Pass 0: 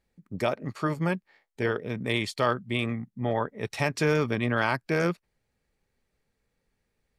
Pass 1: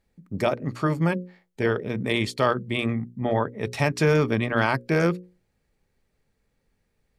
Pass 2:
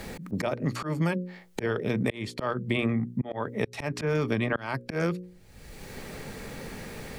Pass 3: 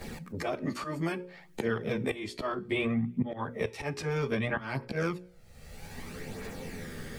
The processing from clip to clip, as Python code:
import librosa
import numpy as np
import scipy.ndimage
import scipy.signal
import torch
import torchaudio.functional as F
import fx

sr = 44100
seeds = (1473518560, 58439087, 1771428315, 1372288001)

y1 = fx.low_shelf(x, sr, hz=490.0, db=4.5)
y1 = fx.hum_notches(y1, sr, base_hz=60, count=9)
y1 = F.gain(torch.from_numpy(y1), 2.0).numpy()
y2 = fx.auto_swell(y1, sr, attack_ms=706.0)
y2 = fx.band_squash(y2, sr, depth_pct=100)
y2 = F.gain(torch.from_numpy(y2), 6.0).numpy()
y3 = fx.rev_double_slope(y2, sr, seeds[0], early_s=0.29, late_s=2.1, knee_db=-28, drr_db=12.5)
y3 = fx.chorus_voices(y3, sr, voices=2, hz=0.31, base_ms=13, depth_ms=1.7, mix_pct=65)